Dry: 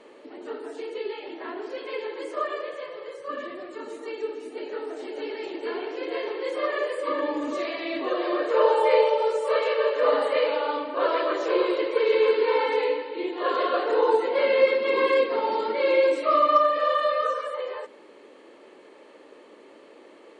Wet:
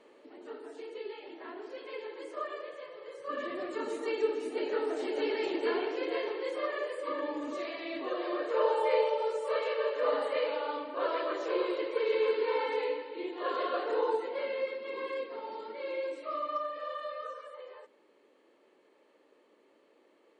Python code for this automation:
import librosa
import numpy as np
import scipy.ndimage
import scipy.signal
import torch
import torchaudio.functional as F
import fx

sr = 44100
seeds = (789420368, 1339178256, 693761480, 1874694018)

y = fx.gain(x, sr, db=fx.line((2.99, -9.0), (3.64, 1.5), (5.57, 1.5), (6.78, -8.0), (13.97, -8.0), (14.7, -15.5)))